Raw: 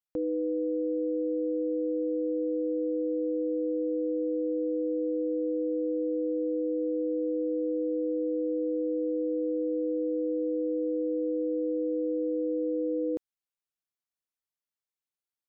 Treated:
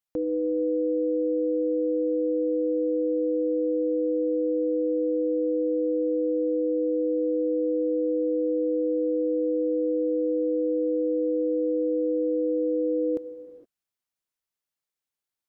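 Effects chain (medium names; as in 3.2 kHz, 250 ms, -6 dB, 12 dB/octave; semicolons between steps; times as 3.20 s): gated-style reverb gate 490 ms flat, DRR 10 dB; trim +3 dB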